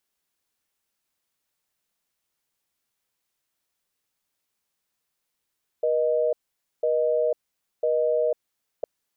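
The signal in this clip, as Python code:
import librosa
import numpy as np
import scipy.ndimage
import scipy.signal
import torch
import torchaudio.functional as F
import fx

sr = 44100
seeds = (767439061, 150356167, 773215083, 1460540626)

y = fx.call_progress(sr, length_s=3.01, kind='busy tone', level_db=-22.5)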